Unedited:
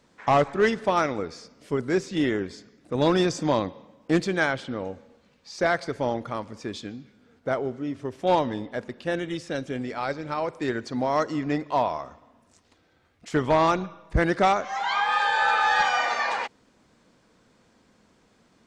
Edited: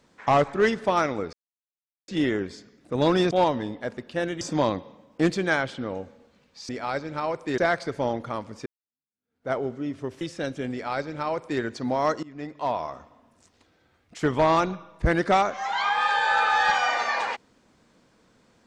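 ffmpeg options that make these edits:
-filter_complex "[0:a]asplit=10[a][b][c][d][e][f][g][h][i][j];[a]atrim=end=1.33,asetpts=PTS-STARTPTS,afade=t=out:st=1.326:d=0.004:c=hsin[k];[b]atrim=start=1.33:end=2.08,asetpts=PTS-STARTPTS,volume=0[l];[c]atrim=start=2.08:end=3.312,asetpts=PTS-STARTPTS,afade=t=in:d=0.004:c=hsin[m];[d]atrim=start=8.218:end=9.322[n];[e]atrim=start=3.308:end=5.592[o];[f]atrim=start=9.828:end=10.722[p];[g]atrim=start=5.588:end=6.67,asetpts=PTS-STARTPTS,afade=t=out:st=1.078:d=0.004:c=hsin[q];[h]atrim=start=6.67:end=8.222,asetpts=PTS-STARTPTS,afade=t=in:d=0.86:c=exp[r];[i]atrim=start=9.318:end=11.34,asetpts=PTS-STARTPTS,afade=t=out:st=2.018:d=0.004:c=hsin:silence=0.0794328[s];[j]atrim=start=11.34,asetpts=PTS-STARTPTS,afade=t=in:d=0.71:silence=0.0794328[t];[k][l][m]concat=n=3:v=0:a=1[u];[u][n]acrossfade=d=0.004:c1=hsin:c2=hsin[v];[v][o]acrossfade=d=0.004:c1=hsin:c2=hsin[w];[w][p]acrossfade=d=0.004:c1=hsin:c2=hsin[x];[q][r]concat=n=2:v=0:a=1[y];[x][y]acrossfade=d=0.004:c1=hsin:c2=hsin[z];[s][t]concat=n=2:v=0:a=1[aa];[z][aa]acrossfade=d=0.004:c1=hsin:c2=hsin"

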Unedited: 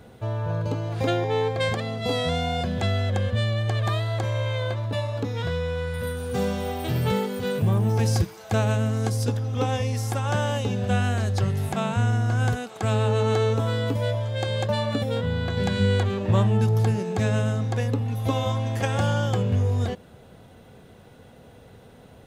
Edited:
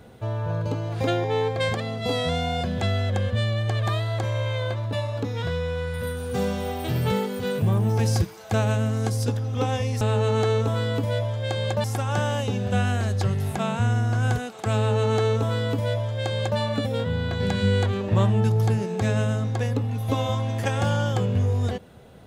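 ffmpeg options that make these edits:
-filter_complex "[0:a]asplit=3[a][b][c];[a]atrim=end=10.012[d];[b]atrim=start=12.928:end=14.762[e];[c]atrim=start=10.008[f];[d][e]acrossfade=d=0.004:c1=hsin:c2=hsin[g];[g][f]acrossfade=d=0.004:c1=hsin:c2=hsin"

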